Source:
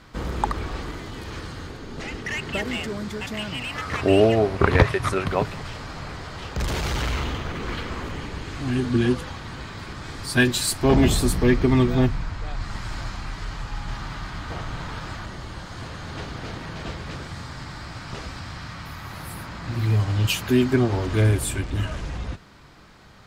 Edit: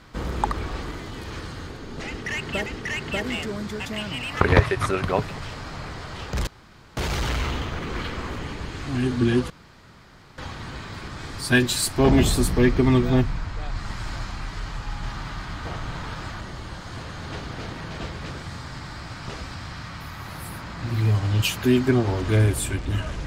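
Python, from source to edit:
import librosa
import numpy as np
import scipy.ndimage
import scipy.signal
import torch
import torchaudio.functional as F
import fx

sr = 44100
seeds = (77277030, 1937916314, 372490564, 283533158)

y = fx.edit(x, sr, fx.repeat(start_s=2.07, length_s=0.59, count=2),
    fx.cut(start_s=3.82, length_s=0.82),
    fx.insert_room_tone(at_s=6.7, length_s=0.5),
    fx.insert_room_tone(at_s=9.23, length_s=0.88), tone=tone)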